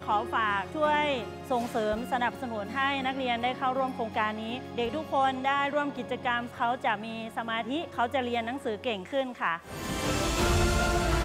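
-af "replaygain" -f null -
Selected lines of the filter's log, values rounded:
track_gain = +10.2 dB
track_peak = 0.132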